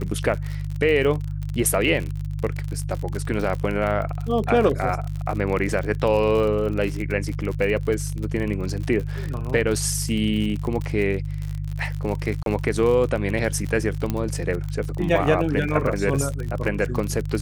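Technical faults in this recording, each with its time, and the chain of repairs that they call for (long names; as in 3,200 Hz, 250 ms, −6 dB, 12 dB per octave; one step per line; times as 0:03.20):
surface crackle 56 per second −27 dBFS
mains hum 50 Hz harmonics 3 −28 dBFS
0:12.43–0:12.46: drop-out 32 ms
0:14.10: click −11 dBFS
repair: click removal
hum removal 50 Hz, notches 3
repair the gap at 0:12.43, 32 ms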